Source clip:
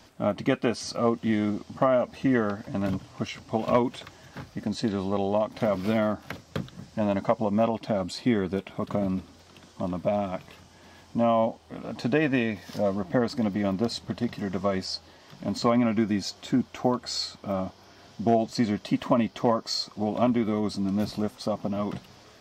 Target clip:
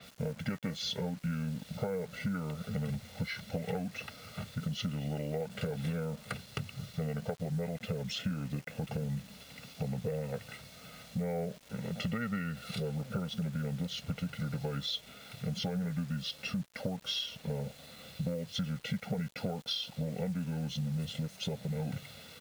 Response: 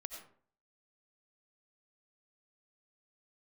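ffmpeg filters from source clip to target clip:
-filter_complex "[0:a]highpass=200,equalizer=f=1100:w=1.1:g=-11,aecho=1:1:1.1:0.96,acompressor=threshold=0.0224:ratio=10,asplit=2[s0][s1];[s1]asoftclip=type=hard:threshold=0.02,volume=0.282[s2];[s0][s2]amix=inputs=2:normalize=0,asetrate=33038,aresample=44100,atempo=1.33484,acrusher=bits=8:mix=0:aa=0.000001,adynamicequalizer=threshold=0.00316:dfrequency=5000:dqfactor=0.7:tfrequency=5000:tqfactor=0.7:attack=5:release=100:ratio=0.375:range=1.5:mode=cutabove:tftype=highshelf"

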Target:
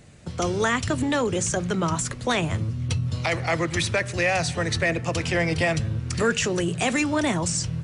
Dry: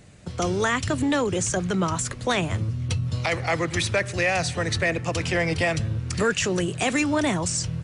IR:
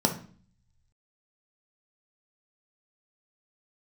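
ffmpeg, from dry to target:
-filter_complex "[0:a]asplit=2[s0][s1];[1:a]atrim=start_sample=2205,adelay=9[s2];[s1][s2]afir=irnorm=-1:irlink=0,volume=0.0355[s3];[s0][s3]amix=inputs=2:normalize=0"

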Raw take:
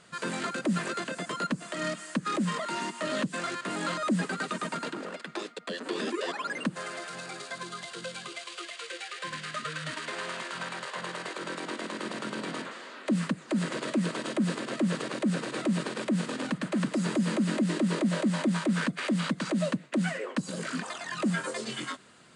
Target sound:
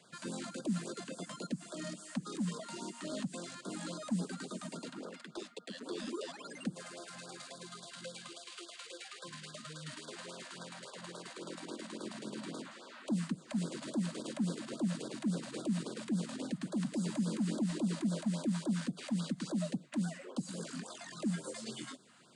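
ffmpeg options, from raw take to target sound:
-filter_complex "[0:a]highpass=120,acrossover=split=260|610|3800[s0][s1][s2][s3];[s1]asoftclip=type=hard:threshold=0.0211[s4];[s2]acompressor=threshold=0.00631:ratio=20[s5];[s0][s4][s5][s3]amix=inputs=4:normalize=0,afftfilt=real='re*(1-between(b*sr/1024,360*pow(2400/360,0.5+0.5*sin(2*PI*3.6*pts/sr))/1.41,360*pow(2400/360,0.5+0.5*sin(2*PI*3.6*pts/sr))*1.41))':imag='im*(1-between(b*sr/1024,360*pow(2400/360,0.5+0.5*sin(2*PI*3.6*pts/sr))/1.41,360*pow(2400/360,0.5+0.5*sin(2*PI*3.6*pts/sr))*1.41))':win_size=1024:overlap=0.75,volume=0.562"

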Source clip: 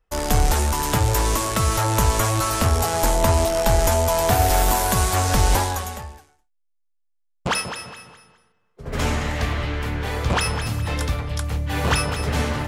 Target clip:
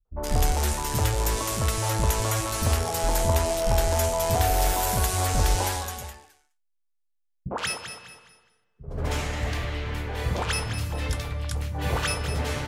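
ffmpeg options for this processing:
-filter_complex "[0:a]aeval=exprs='0.562*(cos(1*acos(clip(val(0)/0.562,-1,1)))-cos(1*PI/2))+0.00355*(cos(3*acos(clip(val(0)/0.562,-1,1)))-cos(3*PI/2))':c=same,acrossover=split=220|1200[s0][s1][s2];[s1]adelay=50[s3];[s2]adelay=120[s4];[s0][s3][s4]amix=inputs=3:normalize=0,volume=0.631"

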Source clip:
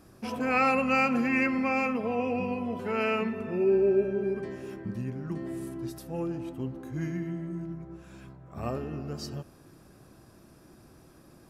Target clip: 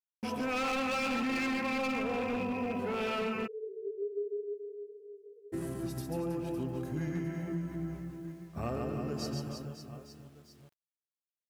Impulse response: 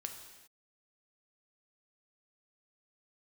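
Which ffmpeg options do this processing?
-filter_complex "[0:a]agate=range=0.00501:threshold=0.00631:ratio=16:detection=peak,aecho=1:1:140|322|558.6|866.2|1266:0.631|0.398|0.251|0.158|0.1,acrusher=bits=10:mix=0:aa=0.000001,asplit=3[s0][s1][s2];[s0]afade=t=out:st=3.46:d=0.02[s3];[s1]asuperpass=centerf=440:order=12:qfactor=6.6,afade=t=in:st=3.46:d=0.02,afade=t=out:st=5.52:d=0.02[s4];[s2]afade=t=in:st=5.52:d=0.02[s5];[s3][s4][s5]amix=inputs=3:normalize=0,asoftclip=type=hard:threshold=0.0596,acompressor=threshold=0.0282:ratio=6"

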